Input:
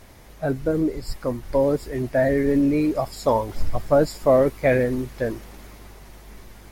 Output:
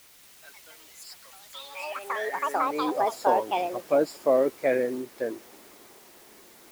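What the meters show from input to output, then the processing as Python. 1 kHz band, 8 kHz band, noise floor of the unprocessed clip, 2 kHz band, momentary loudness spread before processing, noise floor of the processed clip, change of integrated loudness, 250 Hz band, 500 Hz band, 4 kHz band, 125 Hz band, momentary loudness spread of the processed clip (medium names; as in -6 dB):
+1.5 dB, -2.0 dB, -46 dBFS, -3.5 dB, 11 LU, -53 dBFS, -4.5 dB, -12.0 dB, -6.0 dB, -0.5 dB, -24.0 dB, 20 LU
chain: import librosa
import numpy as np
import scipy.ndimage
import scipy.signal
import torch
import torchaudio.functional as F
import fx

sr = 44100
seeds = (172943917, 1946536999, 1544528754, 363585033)

y = fx.filter_sweep_highpass(x, sr, from_hz=2700.0, to_hz=330.0, start_s=2.03, end_s=2.96, q=1.4)
y = fx.quant_dither(y, sr, seeds[0], bits=8, dither='triangular')
y = fx.echo_pitch(y, sr, ms=233, semitones=6, count=2, db_per_echo=-3.0)
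y = y * 10.0 ** (-7.0 / 20.0)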